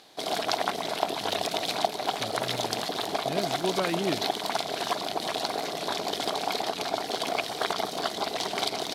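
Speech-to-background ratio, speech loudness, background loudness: -5.0 dB, -34.5 LUFS, -29.5 LUFS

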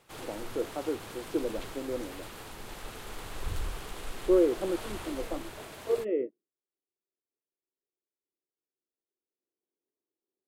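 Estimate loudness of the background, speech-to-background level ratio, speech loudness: -42.5 LUFS, 10.5 dB, -32.0 LUFS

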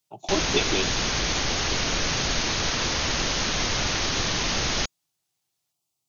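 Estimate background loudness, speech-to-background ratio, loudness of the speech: -24.5 LUFS, -4.0 dB, -28.5 LUFS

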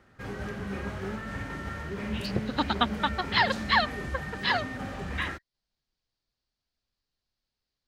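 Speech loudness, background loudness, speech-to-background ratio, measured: -28.5 LUFS, -35.5 LUFS, 7.0 dB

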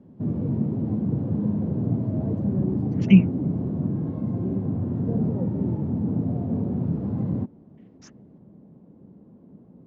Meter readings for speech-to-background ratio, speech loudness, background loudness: 7.5 dB, -19.0 LUFS, -26.5 LUFS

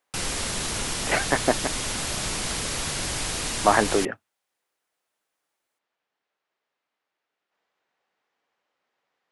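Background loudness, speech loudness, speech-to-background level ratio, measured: -27.5 LUFS, -25.0 LUFS, 2.5 dB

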